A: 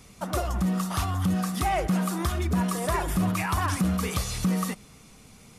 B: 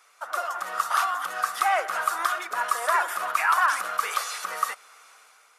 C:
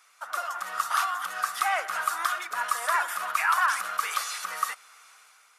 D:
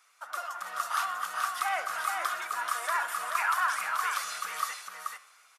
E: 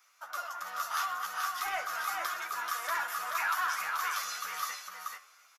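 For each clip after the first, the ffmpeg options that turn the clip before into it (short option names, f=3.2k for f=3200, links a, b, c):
-af "highpass=f=570:w=0.5412,highpass=f=570:w=1.3066,equalizer=f=1.4k:w=1.7:g=13.5,dynaudnorm=f=100:g=9:m=10dB,volume=-7.5dB"
-af "equalizer=f=440:t=o:w=1.8:g=-9"
-af "flanger=delay=8.6:depth=3.6:regen=88:speed=0.72:shape=sinusoidal,aecho=1:1:432:0.596"
-filter_complex "[0:a]acrossover=split=1500[a][b];[a]asoftclip=type=tanh:threshold=-28.5dB[c];[b]aexciter=amount=1.1:drive=4.3:freq=5.1k[d];[c][d]amix=inputs=2:normalize=0,asplit=2[e][f];[f]adelay=12,volume=-5dB[g];[e][g]amix=inputs=2:normalize=0,volume=-3dB"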